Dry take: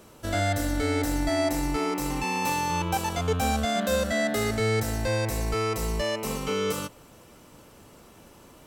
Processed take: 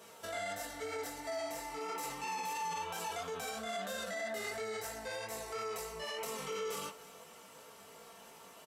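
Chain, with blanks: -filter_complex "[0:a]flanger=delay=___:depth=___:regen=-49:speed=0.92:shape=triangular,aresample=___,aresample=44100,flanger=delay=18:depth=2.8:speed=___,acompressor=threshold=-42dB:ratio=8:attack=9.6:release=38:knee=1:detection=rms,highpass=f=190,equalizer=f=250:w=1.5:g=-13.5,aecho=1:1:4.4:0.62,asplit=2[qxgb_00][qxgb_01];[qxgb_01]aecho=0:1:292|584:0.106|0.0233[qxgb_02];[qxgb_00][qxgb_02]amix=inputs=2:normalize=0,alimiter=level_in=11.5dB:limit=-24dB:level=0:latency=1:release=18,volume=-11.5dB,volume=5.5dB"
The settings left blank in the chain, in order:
7.3, 9.2, 32000, 3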